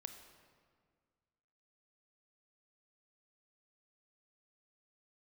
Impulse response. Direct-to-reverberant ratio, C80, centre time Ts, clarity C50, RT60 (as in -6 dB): 6.5 dB, 9.0 dB, 27 ms, 8.0 dB, 1.8 s